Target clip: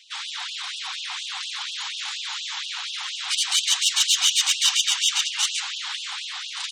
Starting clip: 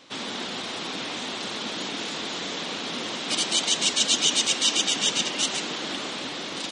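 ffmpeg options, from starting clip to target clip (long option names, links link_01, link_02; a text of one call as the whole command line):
ffmpeg -i in.wav -af "aeval=exprs='0.398*(cos(1*acos(clip(val(0)/0.398,-1,1)))-cos(1*PI/2))+0.112*(cos(2*acos(clip(val(0)/0.398,-1,1)))-cos(2*PI/2))+0.0112*(cos(4*acos(clip(val(0)/0.398,-1,1)))-cos(4*PI/2))+0.00891*(cos(6*acos(clip(val(0)/0.398,-1,1)))-cos(6*PI/2))+0.00891*(cos(8*acos(clip(val(0)/0.398,-1,1)))-cos(8*PI/2))':channel_layout=same,afftfilt=real='re*gte(b*sr/1024,720*pow(2700/720,0.5+0.5*sin(2*PI*4.2*pts/sr)))':imag='im*gte(b*sr/1024,720*pow(2700/720,0.5+0.5*sin(2*PI*4.2*pts/sr)))':win_size=1024:overlap=0.75,volume=2.5dB" out.wav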